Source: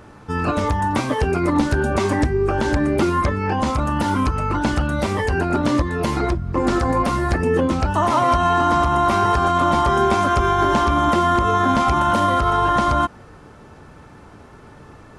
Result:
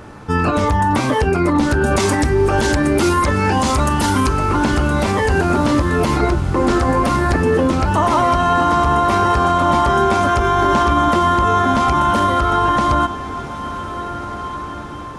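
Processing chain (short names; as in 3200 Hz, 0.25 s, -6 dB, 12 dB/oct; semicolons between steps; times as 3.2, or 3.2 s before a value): 1.86–4.33 high shelf 3700 Hz +12 dB; limiter -14 dBFS, peak gain reduction 8.5 dB; diffused feedback echo 1.624 s, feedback 46%, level -12 dB; gain +6.5 dB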